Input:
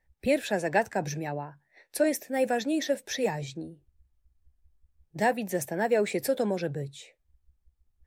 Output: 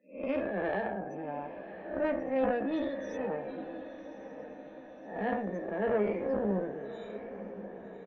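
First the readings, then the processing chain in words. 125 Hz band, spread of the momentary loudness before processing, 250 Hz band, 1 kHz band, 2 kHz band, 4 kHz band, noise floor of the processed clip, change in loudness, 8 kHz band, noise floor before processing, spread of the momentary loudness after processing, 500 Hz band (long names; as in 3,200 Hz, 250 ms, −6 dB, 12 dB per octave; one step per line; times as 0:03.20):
−7.0 dB, 14 LU, −3.0 dB, −5.0 dB, −7.0 dB, −16.0 dB, −49 dBFS, −5.5 dB, below −25 dB, −74 dBFS, 15 LU, −3.5 dB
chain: spectrum smeared in time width 222 ms
elliptic high-pass filter 180 Hz
high-shelf EQ 8,800 Hz −7 dB
spectral peaks only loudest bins 32
harmonic generator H 2 −15 dB, 3 −17 dB, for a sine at −21.5 dBFS
double-tracking delay 15 ms −6 dB
feedback delay with all-pass diffusion 1,110 ms, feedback 55%, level −12 dB
level +4 dB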